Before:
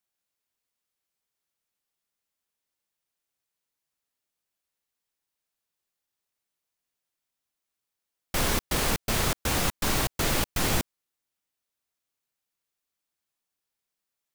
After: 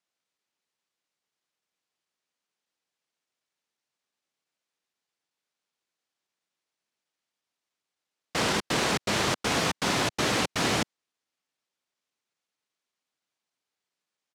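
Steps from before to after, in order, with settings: pitch shift -1.5 st; BPF 150–6500 Hz; gain +2.5 dB

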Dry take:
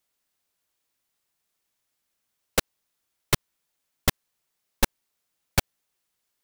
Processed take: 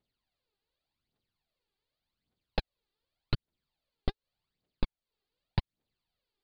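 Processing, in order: steep low-pass 4700 Hz 96 dB/oct; bell 1700 Hz -11.5 dB 2.7 oct; phaser 0.86 Hz, delay 2.6 ms, feedback 65%; compressor 6:1, threshold -27 dBFS, peak gain reduction 17 dB; gain +1 dB

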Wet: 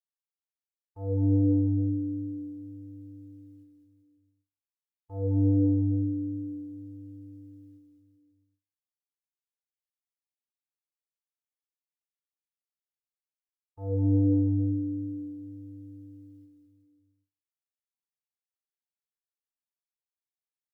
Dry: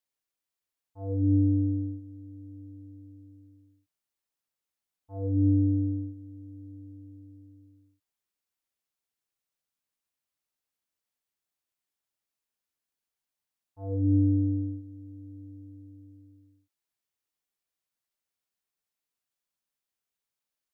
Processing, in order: gate with hold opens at -48 dBFS; comb 2.4 ms, depth 71%; bouncing-ball echo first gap 0.21 s, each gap 0.85×, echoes 5

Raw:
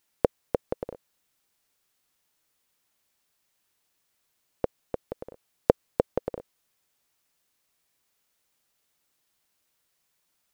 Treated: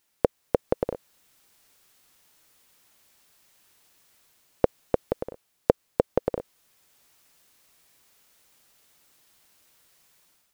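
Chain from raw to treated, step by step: AGC gain up to 10 dB; in parallel at 0 dB: limiter -8 dBFS, peak gain reduction 7 dB; on the sum: gain -3.5 dB

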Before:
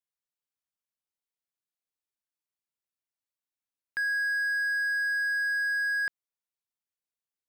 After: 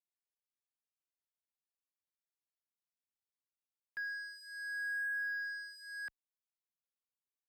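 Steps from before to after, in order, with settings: endless flanger 2.4 ms +0.73 Hz; gain -8.5 dB

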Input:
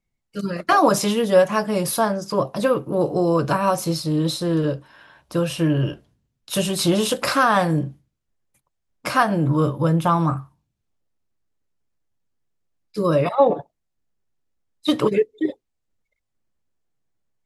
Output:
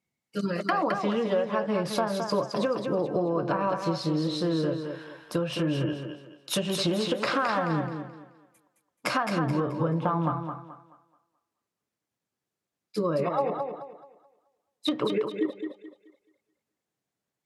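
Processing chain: treble ducked by the level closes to 2200 Hz, closed at -16 dBFS; HPF 150 Hz; compressor, threshold -24 dBFS, peak gain reduction 13.5 dB; thinning echo 0.215 s, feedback 33%, high-pass 200 Hz, level -5.5 dB

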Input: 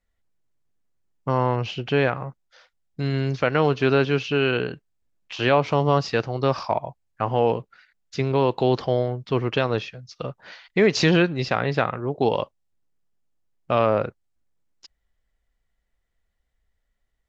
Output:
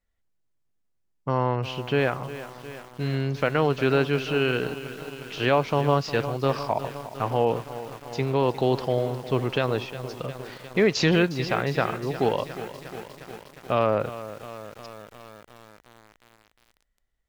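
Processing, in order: lo-fi delay 0.357 s, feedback 80%, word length 6-bit, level -13.5 dB; gain -2.5 dB

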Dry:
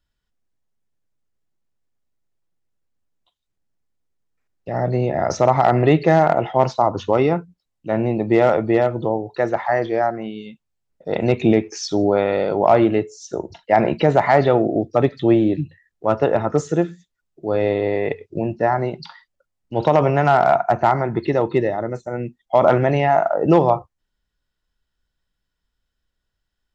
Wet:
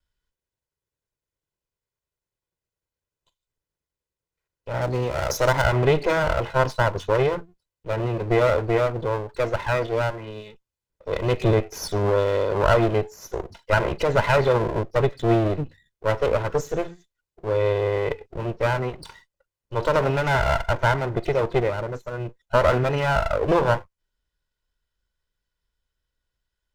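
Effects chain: minimum comb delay 2 ms; 4.81–5.62 tone controls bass -2 dB, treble +7 dB; gain -2 dB

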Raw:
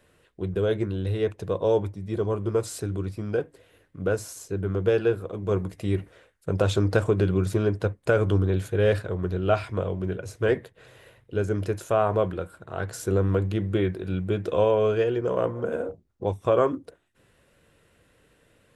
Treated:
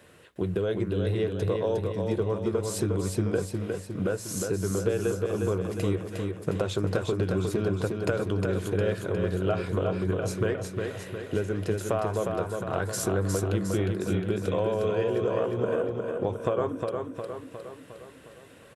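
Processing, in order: HPF 87 Hz; compressor 6:1, threshold -33 dBFS, peak gain reduction 16 dB; feedback echo 0.358 s, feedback 55%, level -4.5 dB; gain +7.5 dB

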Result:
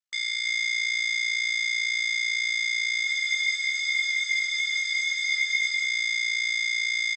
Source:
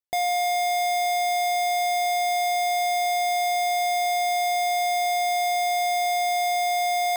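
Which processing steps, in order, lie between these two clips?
brick-wall FIR band-pass 1200–8300 Hz; comb 6.5 ms, depth 70%; ring modulator 29 Hz; on a send: echo 0.327 s -5 dB; on the sum: spectral freeze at 3.07, 2.79 s; gain +2.5 dB

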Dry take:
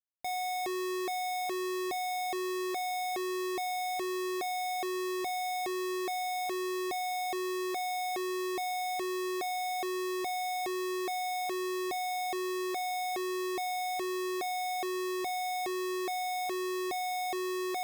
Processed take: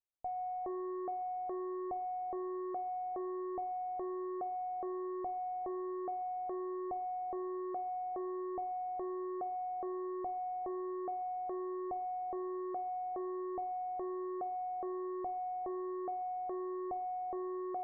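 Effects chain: Gaussian blur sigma 10 samples; bell 240 Hz -14.5 dB 2.8 oct; on a send: reverb RT60 0.90 s, pre-delay 4 ms, DRR 13 dB; on the sum: gain +8.5 dB

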